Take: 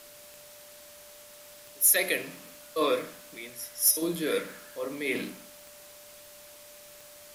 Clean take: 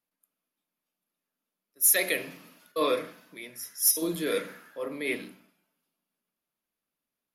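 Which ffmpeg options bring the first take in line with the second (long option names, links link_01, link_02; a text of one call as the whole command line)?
ffmpeg -i in.wav -af "adeclick=threshold=4,bandreject=frequency=590:width=30,afwtdn=0.0032,asetnsamples=nb_out_samples=441:pad=0,asendcmd='5.15 volume volume -6.5dB',volume=0dB" out.wav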